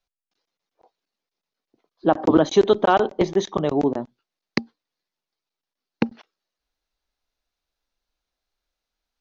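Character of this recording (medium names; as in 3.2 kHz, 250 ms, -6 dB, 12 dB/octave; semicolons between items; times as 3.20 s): noise floor -88 dBFS; spectral tilt -5.0 dB/octave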